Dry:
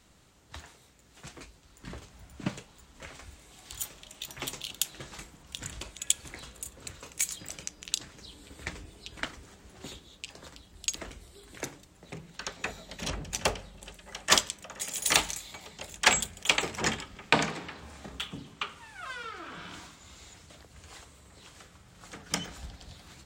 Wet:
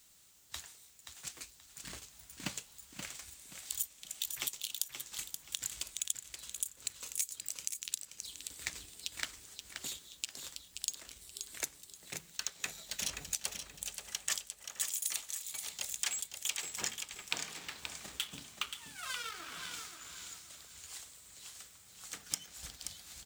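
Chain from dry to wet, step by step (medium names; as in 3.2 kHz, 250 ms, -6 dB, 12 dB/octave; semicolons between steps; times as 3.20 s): companding laws mixed up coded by A; pre-emphasis filter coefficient 0.9; compression 20:1, threshold -46 dBFS, peak gain reduction 27.5 dB; on a send: feedback delay 528 ms, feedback 28%, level -7.5 dB; on the sum: trim +13 dB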